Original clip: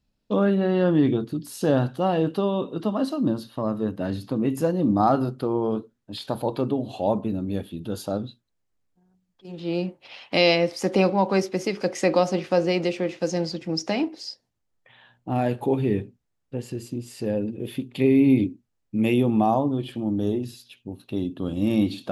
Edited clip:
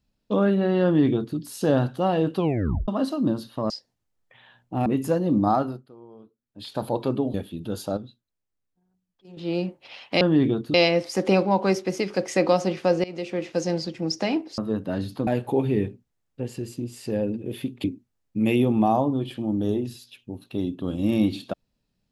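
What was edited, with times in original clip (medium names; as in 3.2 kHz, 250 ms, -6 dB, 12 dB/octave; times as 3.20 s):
0.84–1.37 s: copy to 10.41 s
2.36 s: tape stop 0.52 s
3.70–4.39 s: swap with 14.25–15.41 s
4.97–6.35 s: dip -22.5 dB, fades 0.44 s
6.87–7.54 s: delete
8.17–9.57 s: gain -7.5 dB
12.71–13.13 s: fade in, from -20 dB
17.98–18.42 s: delete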